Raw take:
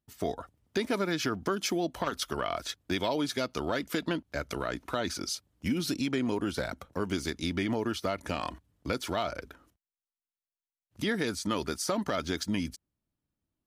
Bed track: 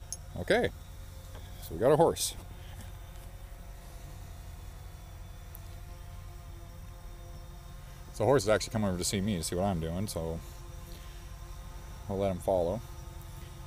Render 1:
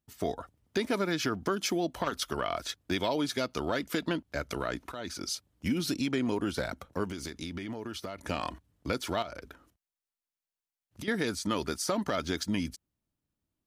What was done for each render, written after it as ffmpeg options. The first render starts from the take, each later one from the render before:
ffmpeg -i in.wav -filter_complex "[0:a]asettb=1/sr,asplit=3[link_01][link_02][link_03];[link_01]atrim=end=7.044[link_04];[link_02]atrim=start=7.04:end=8.24,asetpts=PTS-STARTPTS,afade=type=in:duration=0.004:curve=qsin,afade=type=out:start_time=1.196:duration=0.004:curve=qsin,acompressor=threshold=-34dB:ratio=6:attack=3.2:release=140:knee=1:detection=peak[link_05];[link_03]atrim=start=8.236[link_06];[link_04][link_05]acrossfade=duration=0.004:curve1=hsin:curve2=qsin[link_07];[link_07][link_06]acrossfade=duration=0.004:curve1=qsin:curve2=hsin,asettb=1/sr,asplit=3[link_08][link_09][link_10];[link_08]atrim=end=9.224[link_11];[link_09]atrim=start=9.22:end=11.08,asetpts=PTS-STARTPTS,afade=type=in:duration=0.004:curve=qsin,afade=type=out:start_time=1.856:duration=0.004:curve=qsin,acompressor=threshold=-37dB:ratio=6:attack=3.2:release=140:knee=1:detection=peak[link_12];[link_10]atrim=start=11.076[link_13];[link_11][link_12]acrossfade=duration=0.004:curve1=hsin:curve2=qsin[link_14];[link_14][link_13]acrossfade=duration=0.004:curve1=qsin:curve2=hsin,asplit=2[link_15][link_16];[link_15]atrim=end=4.92,asetpts=PTS-STARTPTS,afade=type=out:start_time=4.916:duration=0.004:curve=hsin:silence=0.251189[link_17];[link_16]atrim=start=4.92,asetpts=PTS-STARTPTS,afade=type=in:duration=0.41:silence=0.251189[link_18];[link_17][link_18]concat=n=2:v=0:a=1" out.wav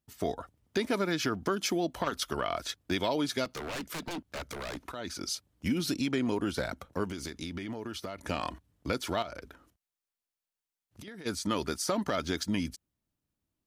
ffmpeg -i in.wav -filter_complex "[0:a]asplit=3[link_01][link_02][link_03];[link_01]afade=type=out:start_time=3.44:duration=0.02[link_04];[link_02]aeval=exprs='0.0266*(abs(mod(val(0)/0.0266+3,4)-2)-1)':channel_layout=same,afade=type=in:start_time=3.44:duration=0.02,afade=type=out:start_time=4.85:duration=0.02[link_05];[link_03]afade=type=in:start_time=4.85:duration=0.02[link_06];[link_04][link_05][link_06]amix=inputs=3:normalize=0,asplit=3[link_07][link_08][link_09];[link_07]afade=type=out:start_time=9.46:duration=0.02[link_10];[link_08]acompressor=threshold=-43dB:ratio=6:attack=3.2:release=140:knee=1:detection=peak,afade=type=in:start_time=9.46:duration=0.02,afade=type=out:start_time=11.25:duration=0.02[link_11];[link_09]afade=type=in:start_time=11.25:duration=0.02[link_12];[link_10][link_11][link_12]amix=inputs=3:normalize=0" out.wav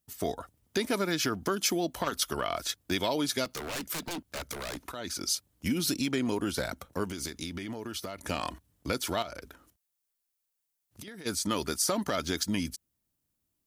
ffmpeg -i in.wav -af "highshelf=frequency=6300:gain=11.5" out.wav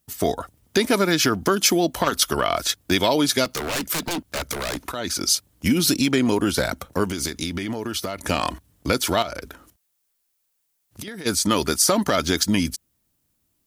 ffmpeg -i in.wav -af "volume=10dB" out.wav

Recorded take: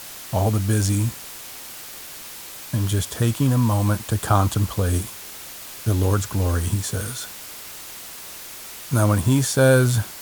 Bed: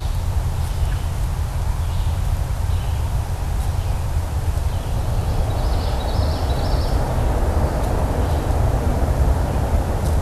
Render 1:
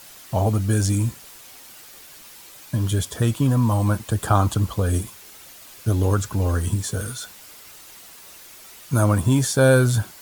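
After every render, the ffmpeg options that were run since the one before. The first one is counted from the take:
ffmpeg -i in.wav -af "afftdn=noise_reduction=8:noise_floor=-38" out.wav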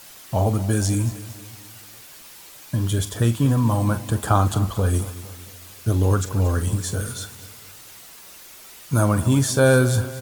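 ffmpeg -i in.wav -filter_complex "[0:a]asplit=2[link_01][link_02];[link_02]adelay=43,volume=-13dB[link_03];[link_01][link_03]amix=inputs=2:normalize=0,aecho=1:1:230|460|690|920:0.168|0.0823|0.0403|0.0198" out.wav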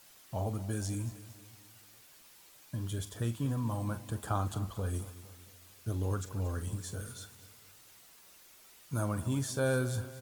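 ffmpeg -i in.wav -af "volume=-14.5dB" out.wav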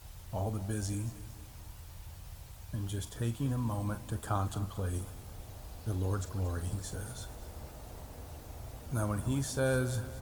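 ffmpeg -i in.wav -i bed.wav -filter_complex "[1:a]volume=-27.5dB[link_01];[0:a][link_01]amix=inputs=2:normalize=0" out.wav

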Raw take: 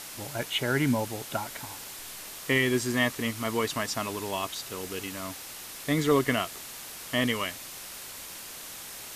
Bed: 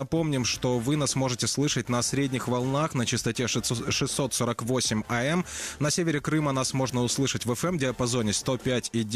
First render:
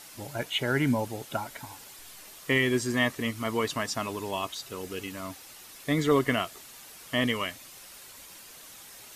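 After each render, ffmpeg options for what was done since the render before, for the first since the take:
ffmpeg -i in.wav -af "afftdn=noise_reduction=8:noise_floor=-42" out.wav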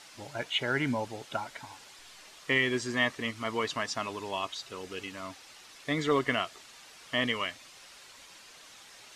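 ffmpeg -i in.wav -af "lowpass=6000,lowshelf=frequency=440:gain=-7.5" out.wav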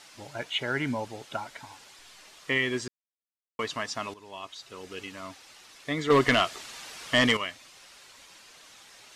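ffmpeg -i in.wav -filter_complex "[0:a]asettb=1/sr,asplit=3[link_01][link_02][link_03];[link_01]atrim=end=6.104[link_04];[link_02]atrim=start=6.1:end=7.37,asetpts=PTS-STARTPTS,afade=type=in:duration=0.004:curve=qsin,afade=type=out:start_time=1.266:duration=0.004:curve=qsin,aeval=exprs='0.2*sin(PI/2*1.78*val(0)/0.2)':channel_layout=same[link_05];[link_03]atrim=start=7.366[link_06];[link_04][link_05]acrossfade=duration=0.004:curve1=hsin:curve2=qsin[link_07];[link_07][link_06]acrossfade=duration=0.004:curve1=qsin:curve2=hsin,asplit=4[link_08][link_09][link_10][link_11];[link_08]atrim=end=2.88,asetpts=PTS-STARTPTS,afade=type=out:start_time=2.876:duration=0.004:curve=hsin[link_12];[link_09]atrim=start=2.88:end=3.59,asetpts=PTS-STARTPTS,volume=0[link_13];[link_10]atrim=start=3.59:end=4.14,asetpts=PTS-STARTPTS,afade=type=in:duration=0.004:curve=hsin,afade=type=out:start_time=0.546:duration=0.004:curve=hsin:silence=0.199526[link_14];[link_11]atrim=start=4.14,asetpts=PTS-STARTPTS,afade=type=in:duration=0.85:silence=0.199526[link_15];[link_12][link_13][link_14][link_15]concat=n=4:v=0:a=1" out.wav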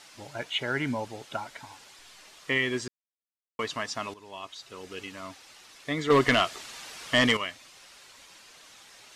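ffmpeg -i in.wav -af anull out.wav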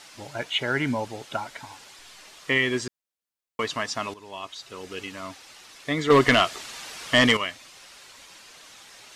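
ffmpeg -i in.wav -af "volume=4dB" out.wav

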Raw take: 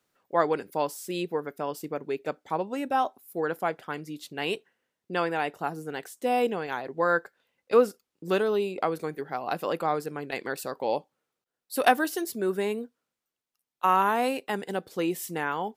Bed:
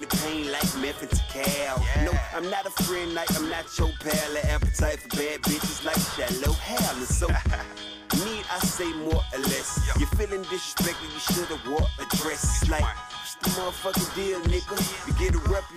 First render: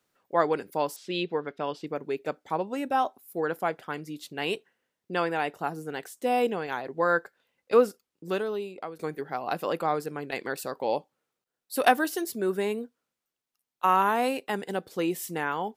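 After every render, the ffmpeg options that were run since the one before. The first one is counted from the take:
ffmpeg -i in.wav -filter_complex "[0:a]asettb=1/sr,asplit=3[link_01][link_02][link_03];[link_01]atrim=end=0.964[link_04];[link_02]atrim=start=0.96:end=1.87,asetpts=PTS-STARTPTS,afade=type=in:duration=0.004:curve=qsin,afade=type=out:start_time=0.906:duration=0.004:curve=qsin,lowpass=frequency=3600:width_type=q:width=2[link_05];[link_03]atrim=start=1.866[link_06];[link_04][link_05]acrossfade=duration=0.004:curve1=hsin:curve2=qsin[link_07];[link_07][link_06]acrossfade=duration=0.004:curve1=qsin:curve2=hsin,asplit=2[link_08][link_09];[link_08]atrim=end=8.99,asetpts=PTS-STARTPTS,afade=type=out:start_time=7.8:duration=1.19:silence=0.223872[link_10];[link_09]atrim=start=8.99,asetpts=PTS-STARTPTS,afade=type=in:duration=0.004:curve=hsin:silence=0.223872[link_11];[link_10][link_11]concat=n=2:v=0:a=1" out.wav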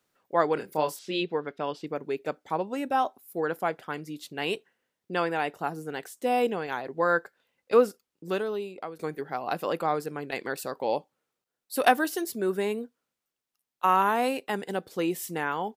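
ffmpeg -i in.wav -filter_complex "[0:a]asplit=3[link_01][link_02][link_03];[link_01]afade=type=out:start_time=0.56:duration=0.02[link_04];[link_02]asplit=2[link_05][link_06];[link_06]adelay=26,volume=-5dB[link_07];[link_05][link_07]amix=inputs=2:normalize=0,afade=type=in:start_time=0.56:duration=0.02,afade=type=out:start_time=1.2:duration=0.02[link_08];[link_03]afade=type=in:start_time=1.2:duration=0.02[link_09];[link_04][link_08][link_09]amix=inputs=3:normalize=0" out.wav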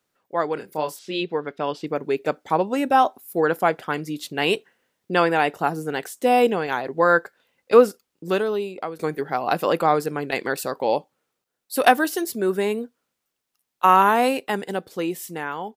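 ffmpeg -i in.wav -af "dynaudnorm=framelen=130:gausssize=21:maxgain=9dB" out.wav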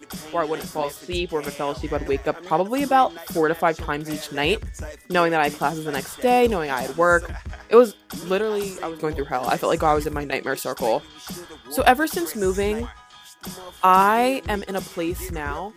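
ffmpeg -i in.wav -i bed.wav -filter_complex "[1:a]volume=-9.5dB[link_01];[0:a][link_01]amix=inputs=2:normalize=0" out.wav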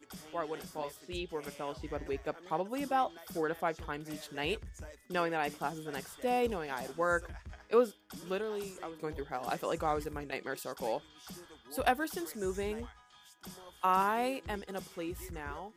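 ffmpeg -i in.wav -af "volume=-13.5dB" out.wav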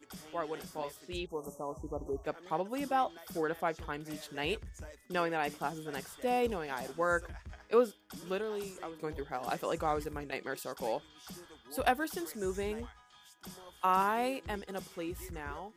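ffmpeg -i in.wav -filter_complex "[0:a]asettb=1/sr,asplit=3[link_01][link_02][link_03];[link_01]atrim=end=1.264[link_04];[link_02]atrim=start=1.26:end=2.24,asetpts=PTS-STARTPTS,afade=type=in:duration=0.004:curve=qsin,afade=type=out:start_time=0.976:duration=0.004:curve=qsin,asuperstop=centerf=2700:order=20:qfactor=0.58[link_05];[link_03]atrim=start=2.236[link_06];[link_04][link_05]acrossfade=duration=0.004:curve1=hsin:curve2=qsin[link_07];[link_07][link_06]acrossfade=duration=0.004:curve1=qsin:curve2=hsin" out.wav

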